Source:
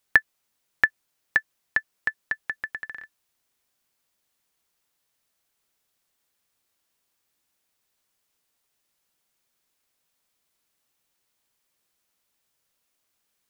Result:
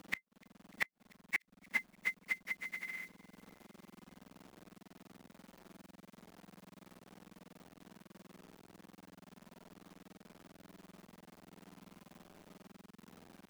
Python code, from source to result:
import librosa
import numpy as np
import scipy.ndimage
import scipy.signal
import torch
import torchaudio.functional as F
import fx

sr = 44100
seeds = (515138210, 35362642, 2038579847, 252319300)

p1 = fx.octave_mirror(x, sr, pivot_hz=1900.0)
p2 = fx.noise_reduce_blind(p1, sr, reduce_db=10)
p3 = fx.level_steps(p2, sr, step_db=15)
p4 = p2 + F.gain(torch.from_numpy(p3), -2.5).numpy()
p5 = fx.quant_companded(p4, sr, bits=6)
p6 = fx.gate_flip(p5, sr, shuts_db=-21.0, range_db=-38)
p7 = p6 + fx.echo_wet_highpass(p6, sr, ms=296, feedback_pct=56, hz=3700.0, wet_db=-22.0, dry=0)
p8 = fx.band_squash(p7, sr, depth_pct=40)
y = F.gain(torch.from_numpy(p8), 8.5).numpy()